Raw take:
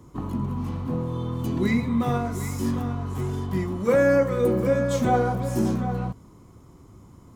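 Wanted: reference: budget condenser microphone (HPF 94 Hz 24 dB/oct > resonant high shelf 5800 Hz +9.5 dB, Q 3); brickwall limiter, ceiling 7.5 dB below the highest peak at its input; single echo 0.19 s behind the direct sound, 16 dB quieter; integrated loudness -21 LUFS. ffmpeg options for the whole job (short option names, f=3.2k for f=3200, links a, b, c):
-af "alimiter=limit=-18.5dB:level=0:latency=1,highpass=f=94:w=0.5412,highpass=f=94:w=1.3066,highshelf=f=5.8k:t=q:w=3:g=9.5,aecho=1:1:190:0.158,volume=6.5dB"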